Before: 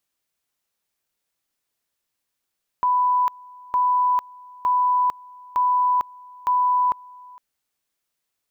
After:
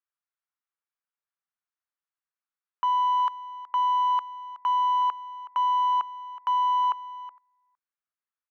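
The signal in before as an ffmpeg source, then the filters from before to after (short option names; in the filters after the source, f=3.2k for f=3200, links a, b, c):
-f lavfi -i "aevalsrc='pow(10,(-16-24.5*gte(mod(t,0.91),0.45))/20)*sin(2*PI*994*t)':d=4.55:s=44100"
-af "aeval=exprs='0.168*(cos(1*acos(clip(val(0)/0.168,-1,1)))-cos(1*PI/2))+0.0376*(cos(3*acos(clip(val(0)/0.168,-1,1)))-cos(3*PI/2))+0.00237*(cos(5*acos(clip(val(0)/0.168,-1,1)))-cos(5*PI/2))+0.0075*(cos(6*acos(clip(val(0)/0.168,-1,1)))-cos(6*PI/2))':c=same,bandpass=f=1.3k:t=q:w=1.9:csg=0,aecho=1:1:371:0.158"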